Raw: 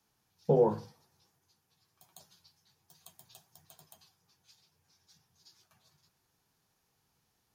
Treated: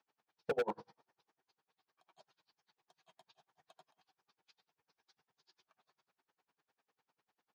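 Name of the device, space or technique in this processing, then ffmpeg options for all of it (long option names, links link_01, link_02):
helicopter radio: -af "highpass=360,lowpass=2700,aeval=exprs='val(0)*pow(10,-34*(0.5-0.5*cos(2*PI*10*n/s))/20)':channel_layout=same,asoftclip=type=hard:threshold=-33dB,volume=4dB"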